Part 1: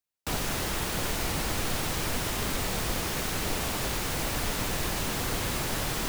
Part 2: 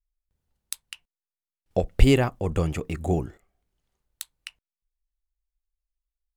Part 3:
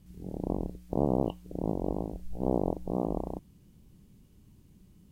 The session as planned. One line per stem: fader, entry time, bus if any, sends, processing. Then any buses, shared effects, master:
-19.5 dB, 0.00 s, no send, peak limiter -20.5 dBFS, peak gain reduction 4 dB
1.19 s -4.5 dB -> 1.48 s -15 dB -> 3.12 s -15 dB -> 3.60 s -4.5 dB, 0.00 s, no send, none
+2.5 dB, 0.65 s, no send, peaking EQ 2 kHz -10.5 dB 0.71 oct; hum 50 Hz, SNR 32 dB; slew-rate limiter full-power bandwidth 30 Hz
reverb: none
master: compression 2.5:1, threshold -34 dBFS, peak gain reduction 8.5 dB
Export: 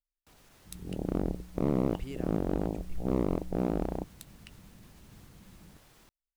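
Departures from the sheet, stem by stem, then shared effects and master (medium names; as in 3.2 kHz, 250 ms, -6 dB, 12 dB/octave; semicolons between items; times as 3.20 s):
stem 1 -19.5 dB -> -28.5 dB; stem 2 -4.5 dB -> -13.5 dB; master: missing compression 2.5:1, threshold -34 dBFS, peak gain reduction 8.5 dB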